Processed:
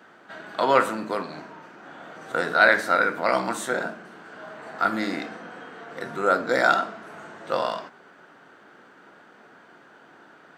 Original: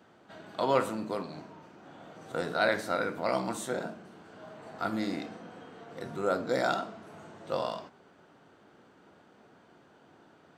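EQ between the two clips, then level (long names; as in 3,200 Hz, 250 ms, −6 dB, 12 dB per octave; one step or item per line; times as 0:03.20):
Bessel high-pass filter 200 Hz, order 2
parametric band 1,600 Hz +8.5 dB 1 octave
+5.5 dB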